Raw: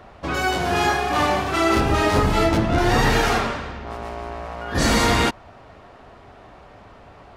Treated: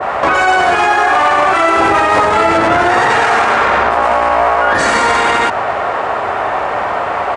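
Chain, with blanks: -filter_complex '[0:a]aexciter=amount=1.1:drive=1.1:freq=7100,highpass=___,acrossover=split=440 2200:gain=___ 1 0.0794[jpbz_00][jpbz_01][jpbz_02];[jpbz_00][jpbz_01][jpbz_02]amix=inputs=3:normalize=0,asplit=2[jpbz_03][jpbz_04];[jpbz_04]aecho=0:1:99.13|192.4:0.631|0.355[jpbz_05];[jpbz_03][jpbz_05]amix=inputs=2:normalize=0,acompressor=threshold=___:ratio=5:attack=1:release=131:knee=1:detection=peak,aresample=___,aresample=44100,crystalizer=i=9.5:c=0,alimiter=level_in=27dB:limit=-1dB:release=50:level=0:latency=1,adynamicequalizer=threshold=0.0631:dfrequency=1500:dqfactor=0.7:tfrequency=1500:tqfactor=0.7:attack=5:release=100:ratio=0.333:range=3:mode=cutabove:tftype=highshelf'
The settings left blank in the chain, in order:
67, 0.178, -30dB, 22050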